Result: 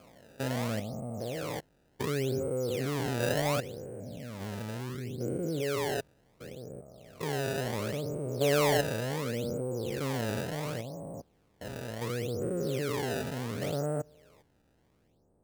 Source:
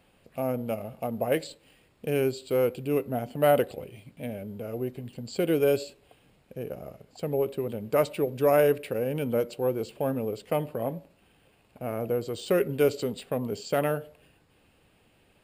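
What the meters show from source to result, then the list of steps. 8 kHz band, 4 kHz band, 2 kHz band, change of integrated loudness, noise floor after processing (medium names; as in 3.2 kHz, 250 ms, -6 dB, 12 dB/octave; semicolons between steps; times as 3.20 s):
+3.0 dB, +3.0 dB, +0.5 dB, -5.0 dB, -69 dBFS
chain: spectrogram pixelated in time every 400 ms; low-pass 1.1 kHz 12 dB/octave; dynamic bell 120 Hz, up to +6 dB, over -48 dBFS, Q 1.1; level-controlled noise filter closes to 770 Hz, open at -29 dBFS; decimation with a swept rate 23×, swing 160% 0.7 Hz; trim -2 dB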